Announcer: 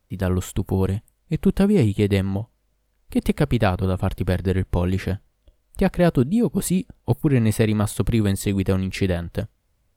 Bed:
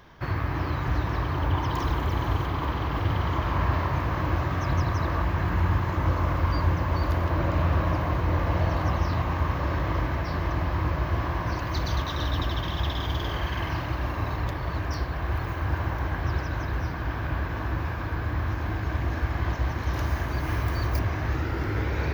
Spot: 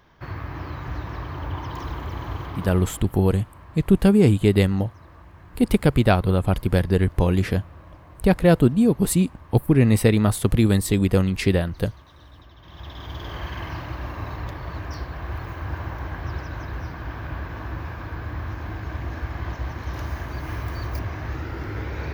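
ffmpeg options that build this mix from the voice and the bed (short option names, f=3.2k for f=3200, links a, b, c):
-filter_complex "[0:a]adelay=2450,volume=2dB[a];[1:a]volume=13dB,afade=t=out:st=2.48:d=0.66:silence=0.158489,afade=t=in:st=12.59:d=0.85:silence=0.125893[b];[a][b]amix=inputs=2:normalize=0"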